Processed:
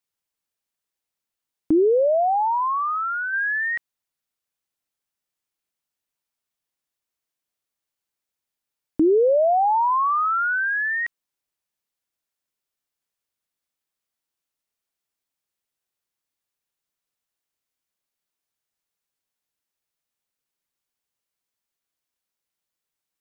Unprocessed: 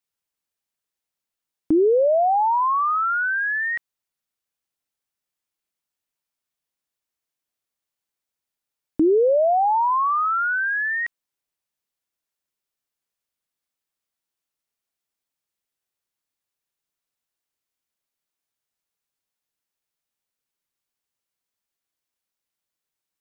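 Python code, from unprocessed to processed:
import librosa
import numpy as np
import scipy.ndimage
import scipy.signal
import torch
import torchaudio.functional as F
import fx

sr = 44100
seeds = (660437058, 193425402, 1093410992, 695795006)

y = fx.high_shelf(x, sr, hz=2000.0, db=-11.5, at=(1.8, 3.32), fade=0.02)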